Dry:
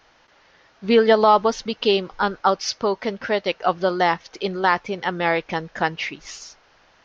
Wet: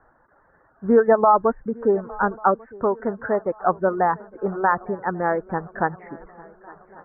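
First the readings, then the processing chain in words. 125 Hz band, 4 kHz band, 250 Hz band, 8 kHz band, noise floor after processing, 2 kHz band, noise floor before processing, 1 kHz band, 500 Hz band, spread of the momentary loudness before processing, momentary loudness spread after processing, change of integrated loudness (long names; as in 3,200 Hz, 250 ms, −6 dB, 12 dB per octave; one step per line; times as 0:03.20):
0.0 dB, below −40 dB, 0.0 dB, can't be measured, −60 dBFS, −4.5 dB, −57 dBFS, 0.0 dB, −0.5 dB, 13 LU, 12 LU, −1.0 dB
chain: Butterworth low-pass 1,700 Hz 72 dB per octave
reverb reduction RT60 0.62 s
low-shelf EQ 160 Hz +4 dB
feedback echo with a long and a short gap by turns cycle 1,142 ms, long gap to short 3 to 1, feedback 49%, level −22.5 dB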